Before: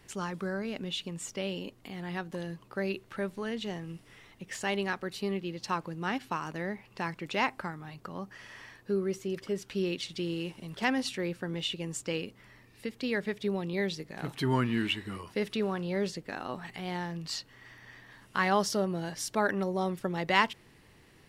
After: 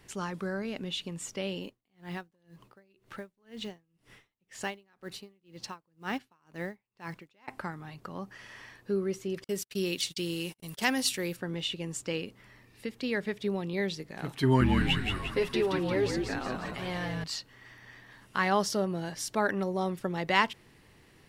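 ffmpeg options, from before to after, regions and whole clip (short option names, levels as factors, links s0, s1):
-filter_complex "[0:a]asettb=1/sr,asplit=3[s0][s1][s2];[s0]atrim=end=1.634[s3];[s1]atrim=start=1.63:end=7.48,asetpts=PTS-STARTPTS,afade=t=in:d=0.004:c=qsin,afade=t=out:st=5.846:d=0.004:c=qsin,acrusher=bits=7:mode=log:mix=0:aa=0.000001,aeval=exprs='val(0)*pow(10,-36*(0.5-0.5*cos(2*PI*2*n/s))/20)':c=same[s4];[s2]atrim=start=7.476[s5];[s3][s4]acrossfade=d=0.004:c1=hsin:c2=qsin[s6];[s6][s5]acrossfade=d=0.004:c1=qsin:c2=hsin,asettb=1/sr,asplit=3[s7][s8][s9];[s7]atrim=end=9.444[s10];[s8]atrim=start=9.44:end=11.37,asetpts=PTS-STARTPTS,afade=t=in:d=0.004:c=qsin,afade=t=out:st=1.926:d=0.004:c=qsin,agate=range=0.00794:threshold=0.00562:ratio=16:release=100:detection=peak,aemphasis=mode=production:type=75fm[s11];[s9]atrim=start=11.366[s12];[s10][s11]acrossfade=d=0.004:c1=hsin:c2=qsin[s13];[s13][s12]acrossfade=d=0.004:c1=qsin:c2=hsin,asettb=1/sr,asplit=3[s14][s15][s16];[s14]atrim=end=14.424[s17];[s15]atrim=start=14.42:end=17.24,asetpts=PTS-STARTPTS,afade=t=in:d=0.004:c=qsin,afade=t=out:st=2.816:d=0.004:c=qsin,aecho=1:1:7.4:0.77,atrim=end_sample=124362,asplit=8[s18][s19][s20][s21][s22][s23][s24][s25];[s19]adelay=175,afreqshift=-60,volume=0.596[s26];[s20]adelay=350,afreqshift=-120,volume=0.316[s27];[s21]adelay=525,afreqshift=-180,volume=0.168[s28];[s22]adelay=700,afreqshift=-240,volume=0.0891[s29];[s23]adelay=875,afreqshift=-300,volume=0.0468[s30];[s24]adelay=1050,afreqshift=-360,volume=0.0248[s31];[s25]adelay=1225,afreqshift=-420,volume=0.0132[s32];[s18][s26][s27][s28][s29][s30][s31][s32]amix=inputs=8:normalize=0,atrim=end_sample=124362[s33];[s16]atrim=start=17.236[s34];[s17][s33]acrossfade=d=0.004:c1=hsin:c2=qsin[s35];[s35][s34]acrossfade=d=0.004:c1=qsin:c2=hsin"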